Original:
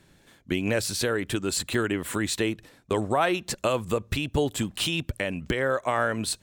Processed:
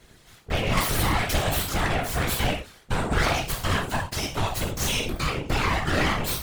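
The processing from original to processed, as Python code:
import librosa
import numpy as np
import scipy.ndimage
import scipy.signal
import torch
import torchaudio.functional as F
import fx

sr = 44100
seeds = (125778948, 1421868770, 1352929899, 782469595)

y = fx.highpass(x, sr, hz=370.0, slope=12, at=(3.89, 4.61))
y = np.abs(y)
y = fx.rev_gated(y, sr, seeds[0], gate_ms=140, shape='falling', drr_db=-1.5)
y = 10.0 ** (-21.0 / 20.0) * np.tanh(y / 10.0 ** (-21.0 / 20.0))
y = fx.whisperise(y, sr, seeds[1])
y = fx.band_squash(y, sr, depth_pct=100, at=(0.77, 1.49))
y = y * librosa.db_to_amplitude(4.0)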